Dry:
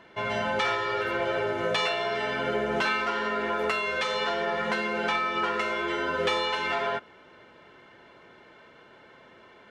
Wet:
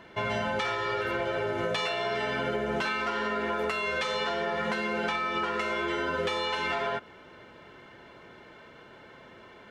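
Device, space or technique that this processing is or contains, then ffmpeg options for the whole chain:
ASMR close-microphone chain: -af "lowshelf=f=190:g=6,acompressor=threshold=0.0398:ratio=6,highshelf=f=7900:g=4,volume=1.19"

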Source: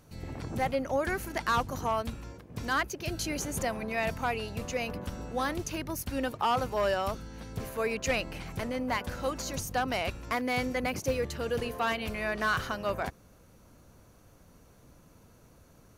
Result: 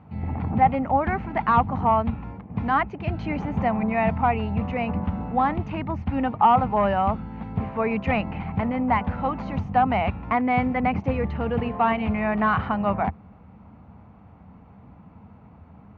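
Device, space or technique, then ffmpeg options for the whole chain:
bass cabinet: -af "highpass=66,equalizer=f=81:t=q:w=4:g=8,equalizer=f=200:t=q:w=4:g=9,equalizer=f=360:t=q:w=4:g=-8,equalizer=f=540:t=q:w=4:g=-8,equalizer=f=820:t=q:w=4:g=8,equalizer=f=1600:t=q:w=4:g=-9,lowpass=f=2200:w=0.5412,lowpass=f=2200:w=1.3066,volume=2.66"

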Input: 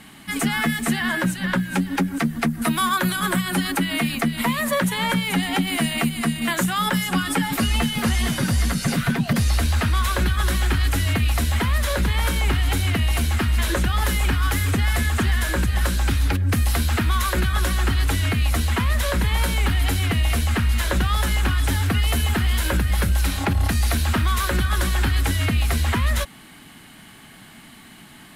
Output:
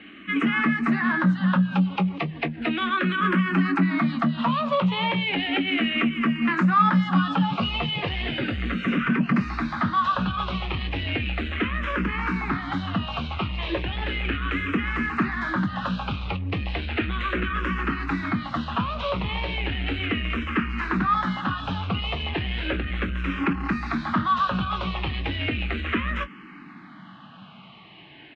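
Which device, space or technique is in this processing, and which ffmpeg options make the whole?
barber-pole phaser into a guitar amplifier: -filter_complex "[0:a]asplit=2[s0][s1];[s1]afreqshift=-0.35[s2];[s0][s2]amix=inputs=2:normalize=1,asoftclip=type=tanh:threshold=0.133,highpass=78,equalizer=f=88:t=q:w=4:g=-8,equalizer=f=190:t=q:w=4:g=5,equalizer=f=310:t=q:w=4:g=7,equalizer=f=1200:t=q:w=4:g=8,equalizer=f=2600:t=q:w=4:g=6,lowpass=f=3400:w=0.5412,lowpass=f=3400:w=1.3066,asplit=2[s3][s4];[s4]adelay=21,volume=0.266[s5];[s3][s5]amix=inputs=2:normalize=0"

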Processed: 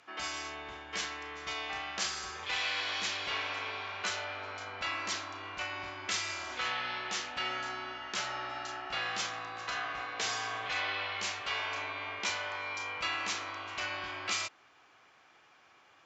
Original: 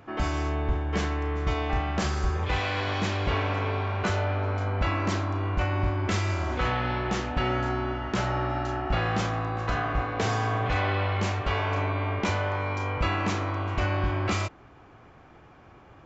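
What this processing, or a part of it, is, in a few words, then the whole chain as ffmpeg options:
piezo pickup straight into a mixer: -af "lowpass=5900,aderivative,volume=2.66"

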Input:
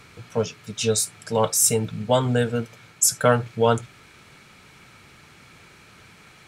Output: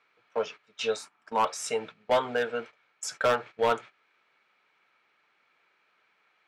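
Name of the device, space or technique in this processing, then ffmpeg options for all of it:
walkie-talkie: -filter_complex "[0:a]asettb=1/sr,asplit=3[s0][s1][s2];[s0]atrim=end=0.964[s3];[s1]atrim=start=0.96:end=1.45,asetpts=PTS-STARTPTS,afade=t=in:d=0.004:c=qsin,afade=t=out:st=0.486:d=0.004:c=qsin,equalizer=f=125:t=o:w=1:g=-4,equalizer=f=250:t=o:w=1:g=9,equalizer=f=500:t=o:w=1:g=-9,equalizer=f=1000:t=o:w=1:g=7,equalizer=f=2000:t=o:w=1:g=-5,equalizer=f=4000:t=o:w=1:g=-6,equalizer=f=8000:t=o:w=1:g=-3[s4];[s2]atrim=start=1.446[s5];[s3][s4]acrossfade=d=0.004:c1=hsin:c2=qsin[s6];[s6][s5]acrossfade=d=0.004:c1=qsin:c2=hsin,highpass=570,lowpass=2900,asoftclip=type=hard:threshold=0.126,agate=range=0.158:threshold=0.00891:ratio=16:detection=peak"

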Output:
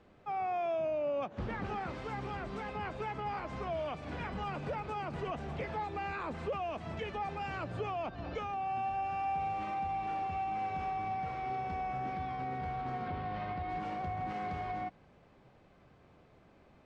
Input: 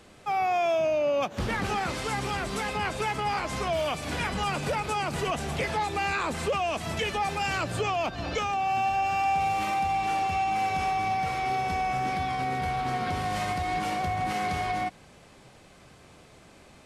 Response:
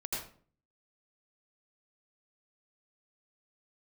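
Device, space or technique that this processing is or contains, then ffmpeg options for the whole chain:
through cloth: -filter_complex "[0:a]lowpass=6300,highshelf=f=3200:g=-17.5,asettb=1/sr,asplit=3[s0][s1][s2];[s0]atrim=end=13.084[s3];[s1]atrim=start=13.08:end=13.7,asetpts=PTS-STARTPTS,afade=t=in:d=0.004:c=qsin,afade=t=out:st=0.616:d=0.004:c=qsin,lowpass=f=4500:w=0.5412,lowpass=f=4500:w=1.3066[s4];[s2]atrim=start=13.696[s5];[s3][s4]acrossfade=d=0.004:c1=hsin:c2=qsin[s6];[s6][s5]acrossfade=d=0.004:c1=qsin:c2=hsin,volume=0.422"

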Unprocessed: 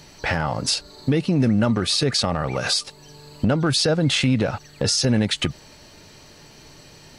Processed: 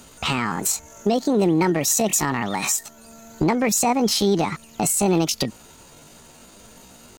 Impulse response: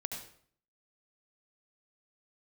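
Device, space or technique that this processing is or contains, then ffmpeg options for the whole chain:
chipmunk voice: -filter_complex "[0:a]asetrate=68011,aresample=44100,atempo=0.64842,asettb=1/sr,asplit=3[s0][s1][s2];[s0]atrim=end=1.804[s3];[s1]atrim=start=1.8:end=2.27,asetpts=PTS-STARTPTS,afade=t=in:d=0.004:c=qsin,afade=t=out:st=0.466:d=0.004:c=qsin,highshelf=f=9100:g=5[s4];[s2]atrim=start=2.266[s5];[s3][s4]acrossfade=d=0.004:c1=hsin:c2=qsin[s6];[s6][s5]acrossfade=d=0.004:c1=qsin:c2=hsin"

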